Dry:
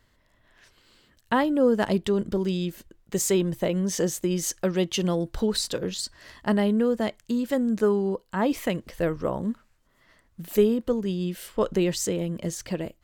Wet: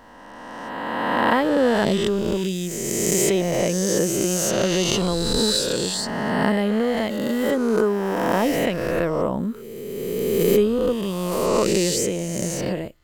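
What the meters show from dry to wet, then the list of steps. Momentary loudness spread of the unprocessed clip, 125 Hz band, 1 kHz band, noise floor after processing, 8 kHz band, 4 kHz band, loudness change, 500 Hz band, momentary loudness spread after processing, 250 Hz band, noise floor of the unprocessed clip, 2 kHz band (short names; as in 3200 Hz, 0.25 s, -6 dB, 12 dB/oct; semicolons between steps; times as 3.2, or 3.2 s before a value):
9 LU, +3.0 dB, +7.5 dB, -38 dBFS, +7.5 dB, +8.5 dB, +4.5 dB, +5.0 dB, 8 LU, +3.0 dB, -65 dBFS, +8.5 dB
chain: spectral swells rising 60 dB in 2.13 s; backwards sustainer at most 24 dB/s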